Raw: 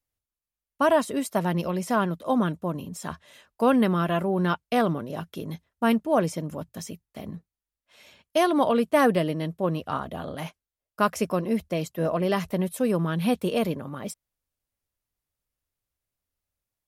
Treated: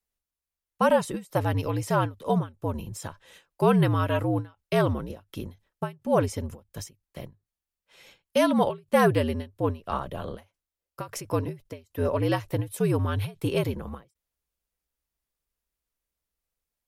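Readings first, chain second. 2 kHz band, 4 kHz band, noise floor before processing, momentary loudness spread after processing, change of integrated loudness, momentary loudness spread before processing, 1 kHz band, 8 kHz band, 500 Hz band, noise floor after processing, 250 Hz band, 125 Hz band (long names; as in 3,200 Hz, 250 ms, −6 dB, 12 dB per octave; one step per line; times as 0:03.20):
−2.0 dB, −2.0 dB, below −85 dBFS, 19 LU, −1.0 dB, 16 LU, −2.0 dB, −1.5 dB, −1.0 dB, below −85 dBFS, −3.5 dB, +3.0 dB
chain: frequency shifter −69 Hz
every ending faded ahead of time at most 230 dB per second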